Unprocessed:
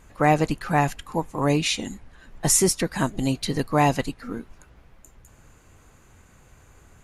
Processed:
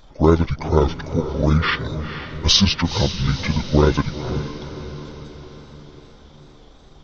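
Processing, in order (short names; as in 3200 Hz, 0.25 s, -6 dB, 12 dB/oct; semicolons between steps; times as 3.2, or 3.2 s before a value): delay-line pitch shifter -11.5 st; wow and flutter 84 cents; diffused feedback echo 0.482 s, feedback 55%, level -11 dB; gain +5.5 dB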